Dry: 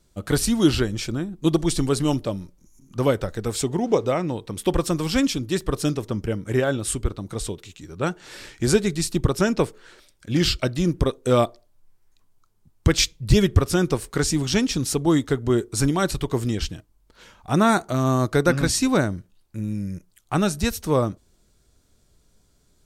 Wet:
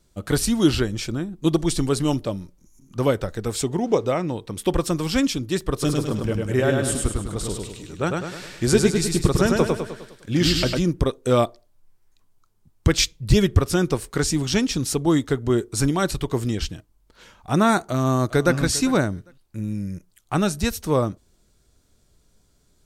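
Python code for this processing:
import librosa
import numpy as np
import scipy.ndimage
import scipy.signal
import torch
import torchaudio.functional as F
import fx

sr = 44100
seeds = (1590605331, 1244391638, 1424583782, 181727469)

y = fx.echo_feedback(x, sr, ms=102, feedback_pct=49, wet_db=-3.0, at=(5.81, 10.78), fade=0.02)
y = fx.echo_throw(y, sr, start_s=17.82, length_s=0.75, ms=400, feedback_pct=15, wet_db=-17.0)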